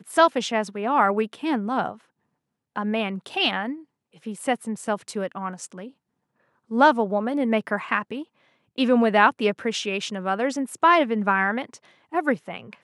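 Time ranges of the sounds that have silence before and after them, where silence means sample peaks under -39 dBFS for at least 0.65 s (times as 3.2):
2.76–5.89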